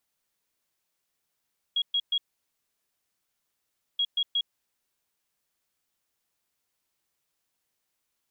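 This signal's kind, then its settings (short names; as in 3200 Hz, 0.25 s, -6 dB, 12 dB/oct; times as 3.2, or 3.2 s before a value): beep pattern sine 3300 Hz, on 0.06 s, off 0.12 s, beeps 3, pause 1.81 s, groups 2, -22.5 dBFS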